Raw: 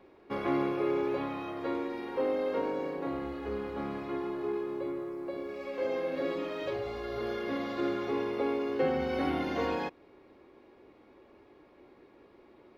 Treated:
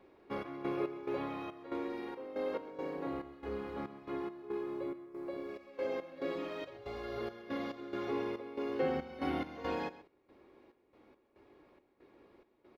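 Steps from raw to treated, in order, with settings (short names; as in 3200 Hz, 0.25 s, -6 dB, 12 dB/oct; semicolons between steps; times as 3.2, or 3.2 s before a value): step gate "xx.x.xx." 70 bpm -12 dB; on a send: echo 0.129 s -16.5 dB; on the sum: gain -4 dB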